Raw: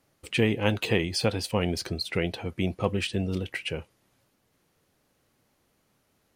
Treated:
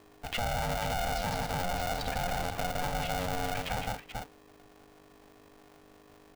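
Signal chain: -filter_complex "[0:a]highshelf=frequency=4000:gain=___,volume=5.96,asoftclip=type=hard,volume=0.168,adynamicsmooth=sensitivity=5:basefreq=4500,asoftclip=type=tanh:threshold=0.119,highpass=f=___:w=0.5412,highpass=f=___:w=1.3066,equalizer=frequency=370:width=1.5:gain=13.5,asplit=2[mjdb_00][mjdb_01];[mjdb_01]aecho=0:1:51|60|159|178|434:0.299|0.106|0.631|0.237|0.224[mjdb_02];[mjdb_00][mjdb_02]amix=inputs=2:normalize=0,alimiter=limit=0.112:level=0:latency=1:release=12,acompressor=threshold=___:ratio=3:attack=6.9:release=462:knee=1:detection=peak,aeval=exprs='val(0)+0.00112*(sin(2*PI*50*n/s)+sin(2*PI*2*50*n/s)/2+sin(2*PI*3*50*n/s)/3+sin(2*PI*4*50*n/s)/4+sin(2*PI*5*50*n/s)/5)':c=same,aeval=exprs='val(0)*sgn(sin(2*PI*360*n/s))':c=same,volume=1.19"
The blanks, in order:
-9, 80, 80, 0.0251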